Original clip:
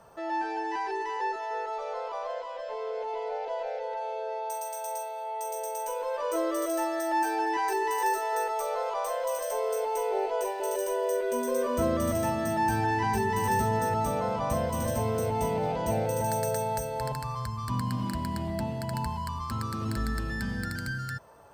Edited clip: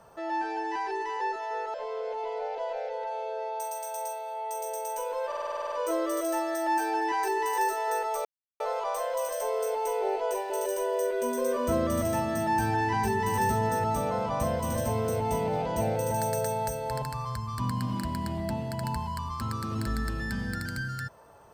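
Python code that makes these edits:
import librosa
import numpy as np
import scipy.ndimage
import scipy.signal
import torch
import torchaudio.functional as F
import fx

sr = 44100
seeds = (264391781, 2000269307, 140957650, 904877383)

y = fx.edit(x, sr, fx.cut(start_s=1.74, length_s=0.9),
    fx.stutter(start_s=6.17, slice_s=0.05, count=10),
    fx.insert_silence(at_s=8.7, length_s=0.35), tone=tone)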